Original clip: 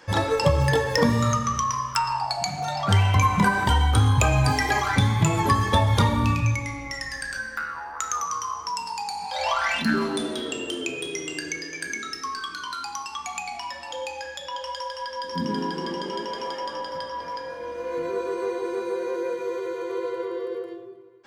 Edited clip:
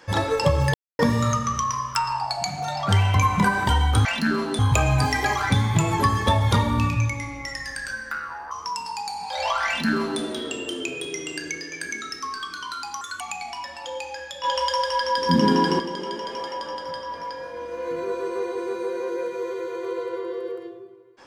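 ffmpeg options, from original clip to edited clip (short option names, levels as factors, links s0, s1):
-filter_complex "[0:a]asplit=10[s0][s1][s2][s3][s4][s5][s6][s7][s8][s9];[s0]atrim=end=0.74,asetpts=PTS-STARTPTS,afade=t=out:st=0.736:d=0.004:c=hsin[s10];[s1]atrim=start=0.74:end=0.99,asetpts=PTS-STARTPTS,volume=0[s11];[s2]atrim=start=0.99:end=4.052,asetpts=PTS-STARTPTS,afade=t=in:d=0.004:c=hsin[s12];[s3]atrim=start=9.678:end=10.222[s13];[s4]atrim=start=4.048:end=7.972[s14];[s5]atrim=start=8.518:end=13.024[s15];[s6]atrim=start=13.02:end=13.27,asetpts=PTS-STARTPTS,asetrate=56448,aresample=44100,atrim=end_sample=8613,asetpts=PTS-STARTPTS[s16];[s7]atrim=start=13.266:end=14.502[s17];[s8]atrim=start=14.498:end=15.862,asetpts=PTS-STARTPTS,volume=2.82[s18];[s9]atrim=start=15.858[s19];[s10][s11][s12]concat=n=3:v=0:a=1[s20];[s20][s13]acrossfade=d=0.004:c1=hsin:c2=hsin[s21];[s21][s14]acrossfade=d=0.004:c1=hsin:c2=hsin[s22];[s22][s15]acrossfade=d=0.004:c1=hsin:c2=hsin[s23];[s23][s16]acrossfade=d=0.004:c1=hsin:c2=hsin[s24];[s24][s17]acrossfade=d=0.004:c1=hsin:c2=hsin[s25];[s25][s18]acrossfade=d=0.004:c1=hsin:c2=hsin[s26];[s26][s19]acrossfade=d=0.004:c1=hsin:c2=hsin"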